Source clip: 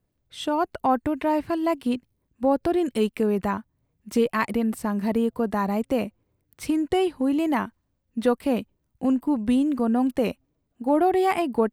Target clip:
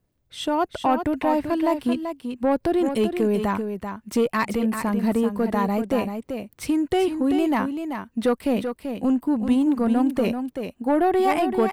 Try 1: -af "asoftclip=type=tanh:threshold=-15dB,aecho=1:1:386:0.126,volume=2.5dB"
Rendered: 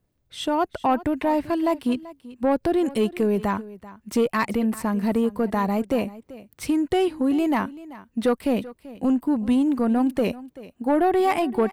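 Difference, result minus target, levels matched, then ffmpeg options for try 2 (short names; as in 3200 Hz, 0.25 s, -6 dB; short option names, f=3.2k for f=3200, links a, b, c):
echo-to-direct -10.5 dB
-af "asoftclip=type=tanh:threshold=-15dB,aecho=1:1:386:0.422,volume=2.5dB"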